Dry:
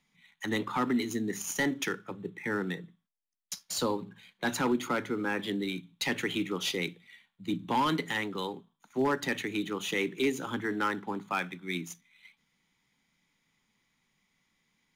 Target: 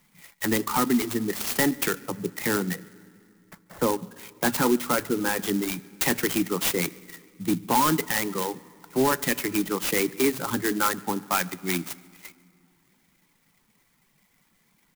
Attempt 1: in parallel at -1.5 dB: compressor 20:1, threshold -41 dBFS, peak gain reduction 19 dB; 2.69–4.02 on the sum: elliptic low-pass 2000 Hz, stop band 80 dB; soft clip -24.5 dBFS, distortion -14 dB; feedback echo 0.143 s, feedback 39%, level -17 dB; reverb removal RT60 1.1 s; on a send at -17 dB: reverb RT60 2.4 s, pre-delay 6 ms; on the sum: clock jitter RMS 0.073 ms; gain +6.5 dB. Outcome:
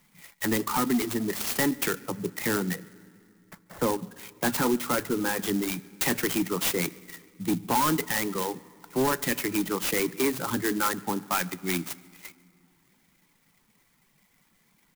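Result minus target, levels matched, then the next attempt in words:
soft clip: distortion +14 dB
in parallel at -1.5 dB: compressor 20:1, threshold -41 dBFS, peak gain reduction 19 dB; 2.69–4.02 on the sum: elliptic low-pass 2000 Hz, stop band 80 dB; soft clip -15.5 dBFS, distortion -28 dB; feedback echo 0.143 s, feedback 39%, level -17 dB; reverb removal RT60 1.1 s; on a send at -17 dB: reverb RT60 2.4 s, pre-delay 6 ms; on the sum: clock jitter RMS 0.073 ms; gain +6.5 dB

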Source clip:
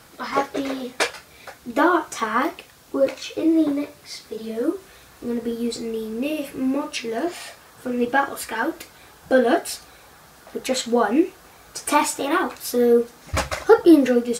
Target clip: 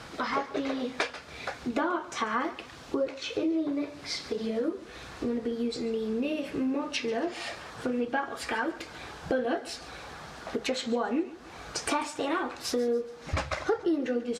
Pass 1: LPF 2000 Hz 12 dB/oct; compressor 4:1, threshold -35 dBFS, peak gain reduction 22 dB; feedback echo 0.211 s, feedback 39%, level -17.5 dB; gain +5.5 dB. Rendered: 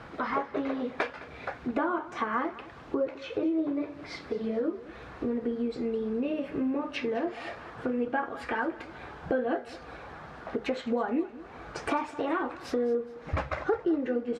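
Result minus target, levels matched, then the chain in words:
echo 70 ms late; 4000 Hz band -9.0 dB
LPF 5300 Hz 12 dB/oct; compressor 4:1, threshold -35 dBFS, peak gain reduction 22 dB; feedback echo 0.141 s, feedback 39%, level -17.5 dB; gain +5.5 dB

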